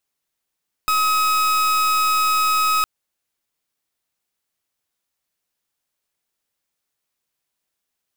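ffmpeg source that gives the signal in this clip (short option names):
-f lavfi -i "aevalsrc='0.126*(2*lt(mod(1270*t,1),0.39)-1)':d=1.96:s=44100"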